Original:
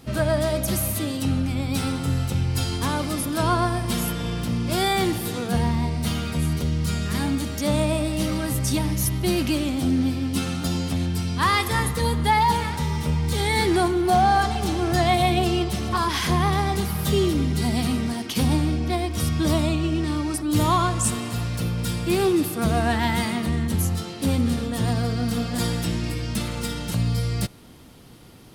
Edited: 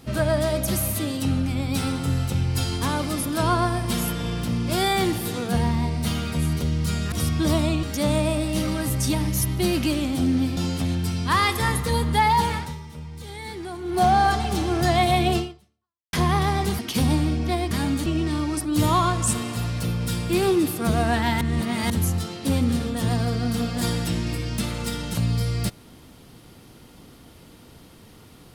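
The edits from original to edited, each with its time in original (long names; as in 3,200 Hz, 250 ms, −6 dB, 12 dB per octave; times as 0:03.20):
0:07.12–0:07.47: swap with 0:19.12–0:19.83
0:10.21–0:10.68: remove
0:12.67–0:14.13: duck −14 dB, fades 0.31 s quadratic
0:15.49–0:16.24: fade out exponential
0:16.90–0:18.20: remove
0:23.18–0:23.67: reverse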